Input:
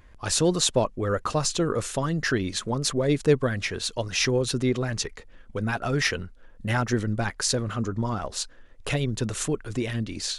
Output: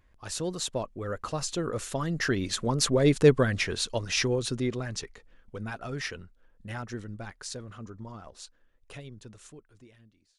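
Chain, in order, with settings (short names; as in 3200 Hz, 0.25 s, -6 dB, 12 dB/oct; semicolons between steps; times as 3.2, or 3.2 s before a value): ending faded out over 1.63 s; Doppler pass-by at 3.2, 5 m/s, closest 3.7 m; gain +1.5 dB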